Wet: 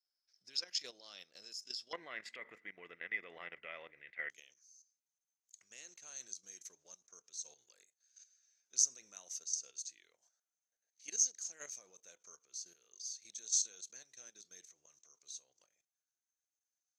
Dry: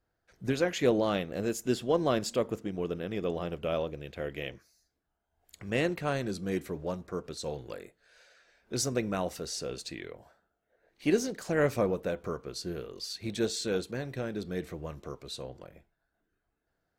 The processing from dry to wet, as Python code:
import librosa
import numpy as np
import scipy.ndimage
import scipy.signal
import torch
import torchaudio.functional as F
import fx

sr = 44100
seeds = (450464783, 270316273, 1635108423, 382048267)

y = fx.level_steps(x, sr, step_db=12)
y = fx.bandpass_q(y, sr, hz=fx.steps((0.0, 5200.0), (1.93, 2000.0), (4.3, 6300.0)), q=17.0)
y = y * 10.0 ** (18.0 / 20.0)